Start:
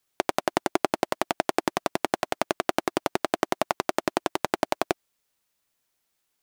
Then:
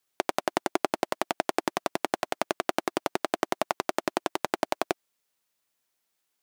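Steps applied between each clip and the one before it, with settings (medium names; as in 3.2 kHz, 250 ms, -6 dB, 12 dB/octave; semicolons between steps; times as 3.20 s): bass shelf 97 Hz -11 dB; trim -2 dB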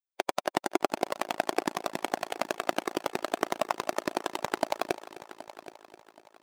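expander on every frequency bin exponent 2; multi-head delay 258 ms, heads first and third, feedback 47%, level -16.5 dB; trim +2.5 dB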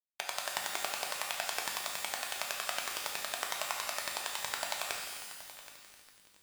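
amplifier tone stack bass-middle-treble 10-0-10; bit crusher 8-bit; pitch-shifted reverb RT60 1.2 s, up +12 st, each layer -2 dB, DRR 1 dB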